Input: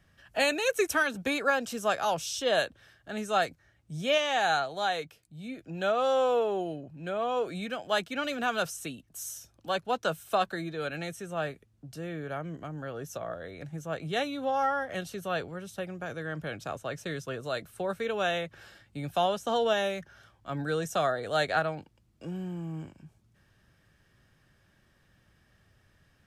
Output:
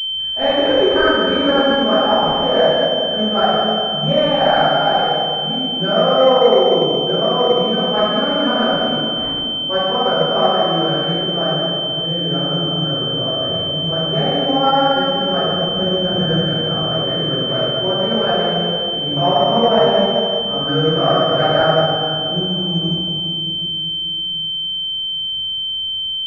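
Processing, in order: 15.67–16.29 low shelf 390 Hz +9 dB; reverb RT60 2.7 s, pre-delay 3 ms, DRR -17 dB; pulse-width modulation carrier 3100 Hz; gain -3 dB

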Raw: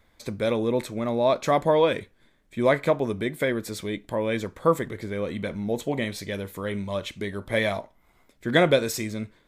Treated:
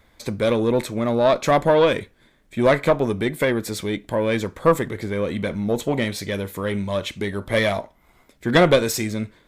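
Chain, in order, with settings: one diode to ground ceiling -16 dBFS; gain +6 dB

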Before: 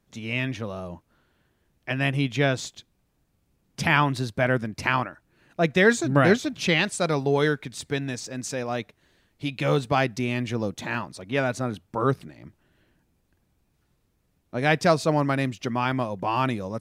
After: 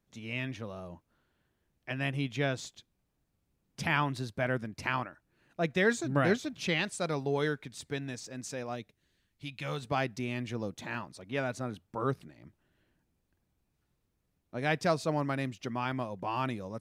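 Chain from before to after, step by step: 8.74–9.81 bell 1300 Hz -> 290 Hz -9 dB 2.3 oct; gain -8.5 dB

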